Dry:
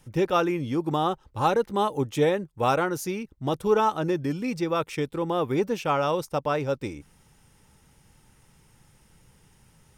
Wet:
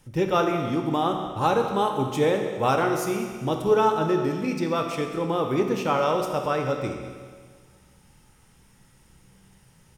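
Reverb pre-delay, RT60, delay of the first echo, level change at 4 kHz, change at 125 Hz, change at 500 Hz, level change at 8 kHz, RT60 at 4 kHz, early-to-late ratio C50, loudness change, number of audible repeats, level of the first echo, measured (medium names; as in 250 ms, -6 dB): 16 ms, 1.7 s, 205 ms, +1.5 dB, +1.0 dB, +2.0 dB, +1.5 dB, 1.6 s, 5.0 dB, +1.5 dB, 1, -15.0 dB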